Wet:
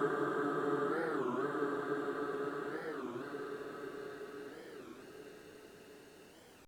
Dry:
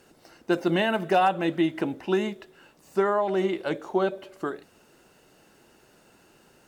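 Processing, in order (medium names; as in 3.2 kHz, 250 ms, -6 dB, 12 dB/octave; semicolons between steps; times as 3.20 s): Paulstretch 27×, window 0.50 s, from 4.51 s; warped record 33 1/3 rpm, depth 250 cents; trim -2 dB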